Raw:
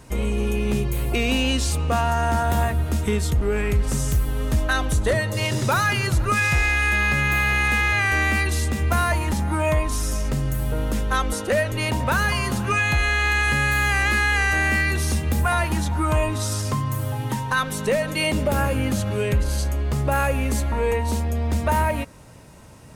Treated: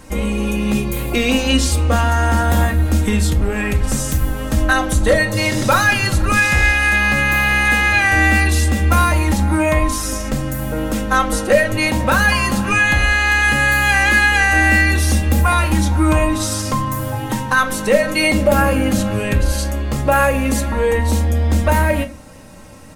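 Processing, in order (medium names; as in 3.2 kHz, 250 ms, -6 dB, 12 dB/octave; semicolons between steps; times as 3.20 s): comb 3.7 ms, depth 55%; on a send: reverberation RT60 0.35 s, pre-delay 5 ms, DRR 8 dB; on the sum: trim +5 dB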